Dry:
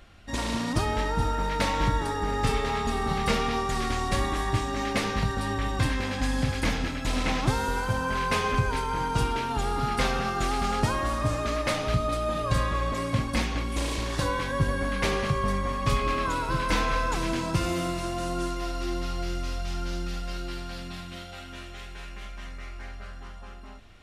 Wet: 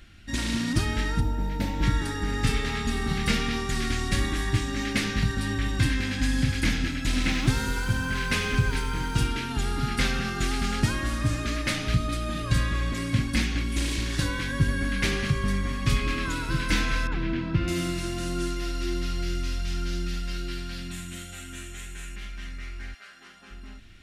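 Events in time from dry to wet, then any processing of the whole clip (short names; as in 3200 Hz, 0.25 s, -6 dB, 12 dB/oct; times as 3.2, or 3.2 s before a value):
1.2–1.83 spectral gain 970–12000 Hz -11 dB
7.13–9.27 lo-fi delay 94 ms, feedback 55%, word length 8-bit, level -12 dB
17.07–17.68 air absorption 350 m
20.91–22.16 resonant high shelf 6100 Hz +7 dB, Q 3
22.93–23.5 HPF 790 Hz -> 210 Hz
whole clip: band shelf 720 Hz -11.5 dB; gain +2.5 dB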